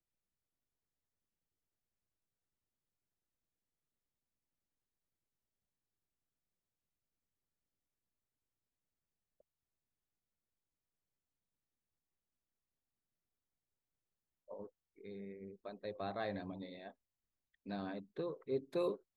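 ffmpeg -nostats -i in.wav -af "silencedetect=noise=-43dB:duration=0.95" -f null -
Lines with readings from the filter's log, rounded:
silence_start: 0.00
silence_end: 14.51 | silence_duration: 14.51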